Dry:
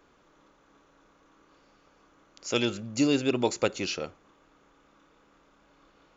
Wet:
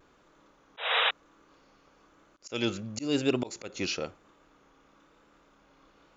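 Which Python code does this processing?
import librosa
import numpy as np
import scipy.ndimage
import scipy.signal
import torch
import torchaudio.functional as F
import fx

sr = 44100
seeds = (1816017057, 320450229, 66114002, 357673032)

y = fx.vibrato(x, sr, rate_hz=1.0, depth_cents=42.0)
y = fx.spec_paint(y, sr, seeds[0], shape='noise', start_s=0.77, length_s=0.34, low_hz=440.0, high_hz=3900.0, level_db=-25.0)
y = fx.auto_swell(y, sr, attack_ms=199.0)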